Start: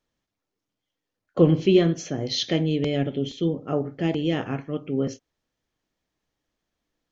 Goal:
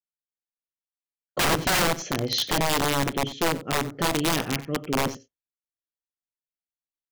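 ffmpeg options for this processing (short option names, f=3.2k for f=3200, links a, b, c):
-af "agate=range=-33dB:threshold=-40dB:ratio=3:detection=peak,aeval=exprs='(mod(7.5*val(0)+1,2)-1)/7.5':c=same,aecho=1:1:92:0.133,volume=1dB"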